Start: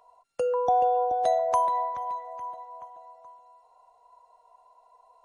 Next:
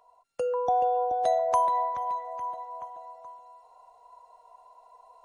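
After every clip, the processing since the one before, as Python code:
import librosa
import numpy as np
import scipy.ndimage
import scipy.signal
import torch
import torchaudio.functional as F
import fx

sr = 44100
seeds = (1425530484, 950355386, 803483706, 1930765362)

y = fx.rider(x, sr, range_db=4, speed_s=2.0)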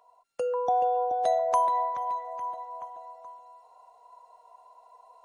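y = fx.low_shelf(x, sr, hz=99.0, db=-12.0)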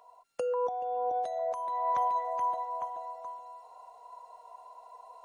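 y = fx.over_compress(x, sr, threshold_db=-31.0, ratio=-1.0)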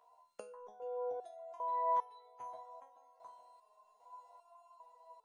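y = fx.resonator_held(x, sr, hz=2.5, low_hz=78.0, high_hz=440.0)
y = y * librosa.db_to_amplitude(1.0)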